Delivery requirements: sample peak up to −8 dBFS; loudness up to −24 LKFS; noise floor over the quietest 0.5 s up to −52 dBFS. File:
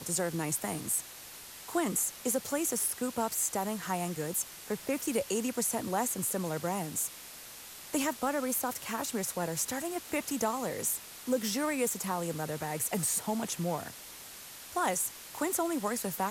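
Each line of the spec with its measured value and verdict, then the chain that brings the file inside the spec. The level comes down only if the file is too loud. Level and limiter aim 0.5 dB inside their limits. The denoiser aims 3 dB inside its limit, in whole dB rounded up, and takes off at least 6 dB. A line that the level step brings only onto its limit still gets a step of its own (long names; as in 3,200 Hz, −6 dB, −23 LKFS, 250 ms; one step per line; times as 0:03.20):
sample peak −17.0 dBFS: in spec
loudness −32.5 LKFS: in spec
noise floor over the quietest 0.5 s −48 dBFS: out of spec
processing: broadband denoise 7 dB, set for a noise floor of −48 dBFS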